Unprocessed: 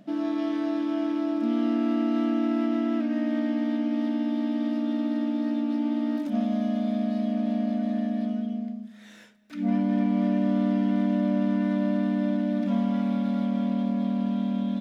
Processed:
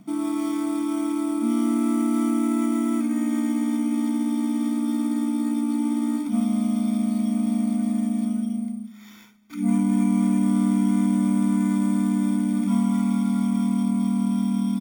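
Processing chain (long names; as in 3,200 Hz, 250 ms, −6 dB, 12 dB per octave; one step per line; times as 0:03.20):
decimation without filtering 5×
comb filter 0.9 ms, depth 92%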